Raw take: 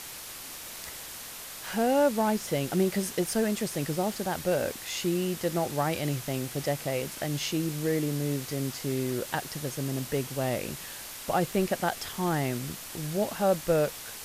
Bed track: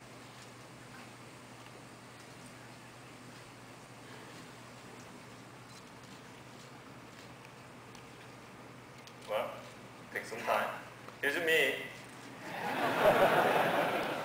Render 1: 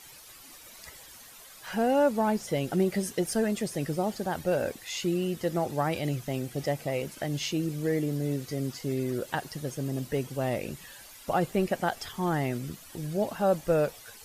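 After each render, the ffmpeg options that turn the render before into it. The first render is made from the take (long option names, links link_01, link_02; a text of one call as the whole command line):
ffmpeg -i in.wav -af "afftdn=noise_reduction=12:noise_floor=-42" out.wav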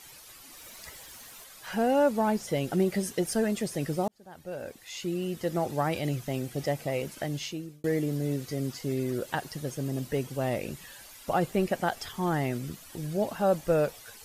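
ffmpeg -i in.wav -filter_complex "[0:a]asettb=1/sr,asplit=3[link_01][link_02][link_03];[link_01]atrim=end=0.574[link_04];[link_02]atrim=start=0.57:end=1.44,asetpts=PTS-STARTPTS,afade=type=in:duration=0.004:curve=qsin,afade=type=out:start_time=0.866:duration=0.004:curve=qsin,aeval=exprs='val(0)+0.5*0.002*sgn(val(0))':channel_layout=same[link_05];[link_03]atrim=start=1.436[link_06];[link_04][link_05]acrossfade=duration=0.004:curve1=hsin:curve2=qsin[link_07];[link_07][link_06]acrossfade=duration=0.004:curve1=qsin:curve2=hsin,asplit=3[link_08][link_09][link_10];[link_08]atrim=end=4.08,asetpts=PTS-STARTPTS,afade=type=out:start_time=4.076:duration=0.004:curve=hsin[link_11];[link_09]atrim=start=4.08:end=7.84,asetpts=PTS-STARTPTS,afade=type=in:duration=1.56,afade=type=out:start_time=3.14:duration=0.62[link_12];[link_10]atrim=start=7.84,asetpts=PTS-STARTPTS,afade=type=in:duration=0.004:curve=hsin[link_13];[link_11][link_12][link_13]concat=n=3:v=0:a=1" out.wav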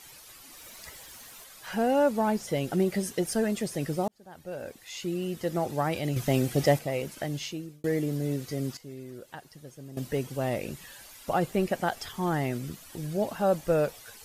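ffmpeg -i in.wav -filter_complex "[0:a]asettb=1/sr,asplit=3[link_01][link_02][link_03];[link_01]atrim=end=6.164[link_04];[link_02]atrim=start=6.16:end=6.79,asetpts=PTS-STARTPTS,afade=type=in:duration=0.004:curve=qsin,afade=type=out:start_time=0.626:duration=0.004:curve=qsin,acontrast=89[link_05];[link_03]atrim=start=6.786[link_06];[link_04][link_05]acrossfade=duration=0.004:curve1=hsin:curve2=qsin[link_07];[link_07][link_06]acrossfade=duration=0.004:curve1=qsin:curve2=hsin,asplit=3[link_08][link_09][link_10];[link_08]atrim=end=8.772[link_11];[link_09]atrim=start=8.768:end=9.972,asetpts=PTS-STARTPTS,volume=-12dB[link_12];[link_10]atrim=start=9.968[link_13];[link_11][link_12]acrossfade=duration=0.004:curve1=hsin:curve2=hsin[link_14];[link_14][link_13]acrossfade=duration=0.004:curve1=hsin:curve2=hsin" out.wav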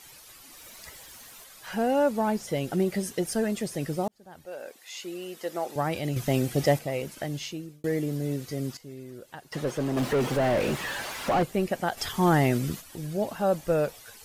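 ffmpeg -i in.wav -filter_complex "[0:a]asettb=1/sr,asplit=3[link_01][link_02][link_03];[link_01]atrim=end=4.454[link_04];[link_02]atrim=start=4.45:end=5.76,asetpts=PTS-STARTPTS,afade=type=in:duration=0.004:curve=qsin,afade=type=out:start_time=1.306:duration=0.004:curve=qsin,highpass=410[link_05];[link_03]atrim=start=5.756[link_06];[link_04][link_05]acrossfade=duration=0.004:curve1=hsin:curve2=qsin[link_07];[link_07][link_06]acrossfade=duration=0.004:curve1=qsin:curve2=hsin,asettb=1/sr,asplit=3[link_08][link_09][link_10];[link_08]atrim=end=9.524[link_11];[link_09]atrim=start=9.52:end=11.43,asetpts=PTS-STARTPTS,afade=type=in:duration=0.004:curve=qsin,afade=type=out:start_time=1.906:duration=0.004:curve=qsin,asplit=2[link_12][link_13];[link_13]highpass=frequency=720:poles=1,volume=36dB,asoftclip=type=tanh:threshold=-16dB[link_14];[link_12][link_14]amix=inputs=2:normalize=0,lowpass=frequency=1100:poles=1,volume=-6dB[link_15];[link_10]atrim=start=11.426[link_16];[link_11][link_15]acrossfade=duration=0.004:curve1=hsin:curve2=qsin[link_17];[link_17][link_16]acrossfade=duration=0.004:curve1=qsin:curve2=hsin,asplit=3[link_18][link_19][link_20];[link_18]afade=type=out:start_time=11.97:duration=0.02[link_21];[link_19]acontrast=82,afade=type=in:start_time=11.97:duration=0.02,afade=type=out:start_time=12.8:duration=0.02[link_22];[link_20]afade=type=in:start_time=12.8:duration=0.02[link_23];[link_21][link_22][link_23]amix=inputs=3:normalize=0" out.wav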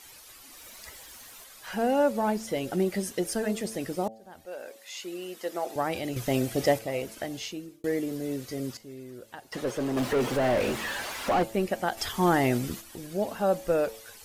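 ffmpeg -i in.wav -af "equalizer=frequency=150:width=6.2:gain=-14,bandreject=frequency=111.2:width_type=h:width=4,bandreject=frequency=222.4:width_type=h:width=4,bandreject=frequency=333.6:width_type=h:width=4,bandreject=frequency=444.8:width_type=h:width=4,bandreject=frequency=556:width_type=h:width=4,bandreject=frequency=667.2:width_type=h:width=4,bandreject=frequency=778.4:width_type=h:width=4,bandreject=frequency=889.6:width_type=h:width=4" out.wav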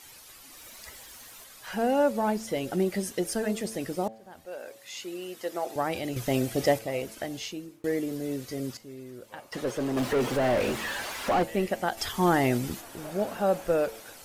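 ffmpeg -i in.wav -i bed.wav -filter_complex "[1:a]volume=-17dB[link_01];[0:a][link_01]amix=inputs=2:normalize=0" out.wav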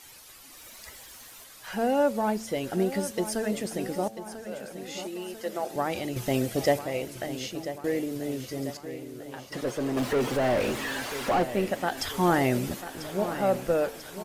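ffmpeg -i in.wav -af "aecho=1:1:992|1984|2976|3968|4960|5952:0.251|0.143|0.0816|0.0465|0.0265|0.0151" out.wav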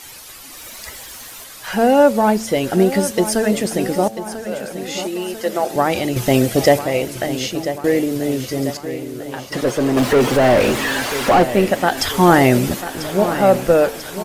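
ffmpeg -i in.wav -af "volume=12dB,alimiter=limit=-1dB:level=0:latency=1" out.wav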